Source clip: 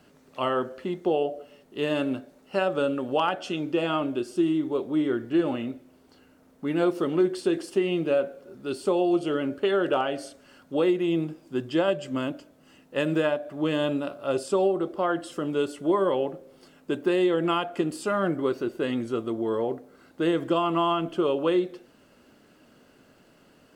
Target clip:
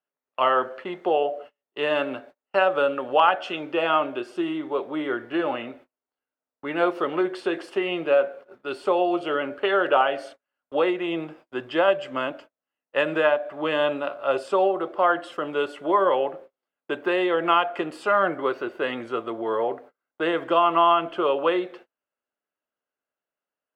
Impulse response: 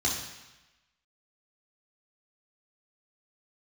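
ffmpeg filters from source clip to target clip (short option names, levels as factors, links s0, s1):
-filter_complex "[0:a]agate=range=0.0141:threshold=0.00631:ratio=16:detection=peak,acrossover=split=520 3100:gain=0.126 1 0.112[s0][s1][s2];[s0][s1][s2]amix=inputs=3:normalize=0,volume=2.66"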